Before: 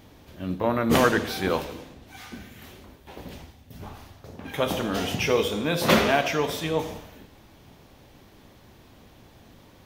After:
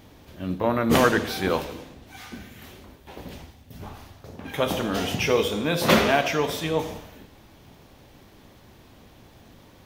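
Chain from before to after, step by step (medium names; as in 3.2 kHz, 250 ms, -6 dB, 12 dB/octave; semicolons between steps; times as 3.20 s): crackle 62 per s -51 dBFS; trim +1 dB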